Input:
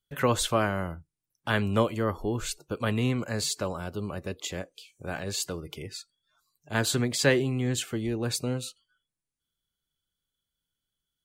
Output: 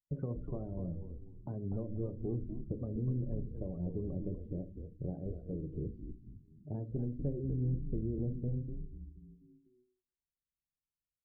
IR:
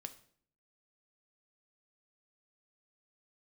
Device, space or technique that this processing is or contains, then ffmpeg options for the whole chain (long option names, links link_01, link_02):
television next door: -filter_complex "[0:a]acompressor=threshold=-41dB:ratio=5,lowpass=350[link_01];[1:a]atrim=start_sample=2205[link_02];[link_01][link_02]afir=irnorm=-1:irlink=0,afftdn=noise_reduction=22:noise_floor=-60,asplit=6[link_03][link_04][link_05][link_06][link_07][link_08];[link_04]adelay=245,afreqshift=-100,volume=-5dB[link_09];[link_05]adelay=490,afreqshift=-200,volume=-12.5dB[link_10];[link_06]adelay=735,afreqshift=-300,volume=-20.1dB[link_11];[link_07]adelay=980,afreqshift=-400,volume=-27.6dB[link_12];[link_08]adelay=1225,afreqshift=-500,volume=-35.1dB[link_13];[link_03][link_09][link_10][link_11][link_12][link_13]amix=inputs=6:normalize=0,volume=11.5dB"